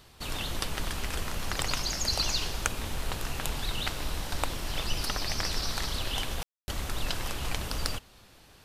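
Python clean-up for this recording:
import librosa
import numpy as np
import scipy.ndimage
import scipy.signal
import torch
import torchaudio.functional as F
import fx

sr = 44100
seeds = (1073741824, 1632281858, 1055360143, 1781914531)

y = fx.fix_declip(x, sr, threshold_db=-11.0)
y = fx.fix_ambience(y, sr, seeds[0], print_start_s=8.0, print_end_s=8.5, start_s=6.43, end_s=6.68)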